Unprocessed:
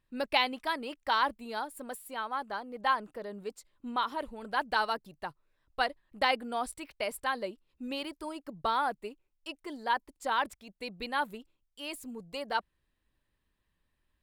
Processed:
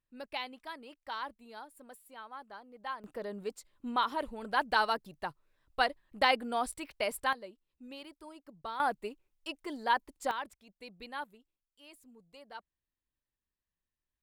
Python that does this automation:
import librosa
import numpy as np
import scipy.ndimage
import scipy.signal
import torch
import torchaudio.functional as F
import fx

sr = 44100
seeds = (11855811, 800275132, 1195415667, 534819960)

y = fx.gain(x, sr, db=fx.steps((0.0, -11.5), (3.04, 1.0), (7.33, -10.5), (8.8, 1.0), (10.31, -9.0), (11.24, -15.5)))